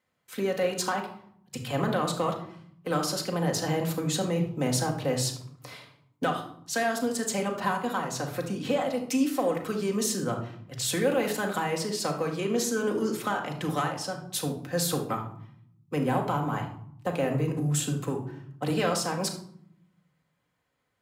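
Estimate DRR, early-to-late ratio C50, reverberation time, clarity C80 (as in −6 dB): 1.0 dB, 8.0 dB, 0.65 s, 12.5 dB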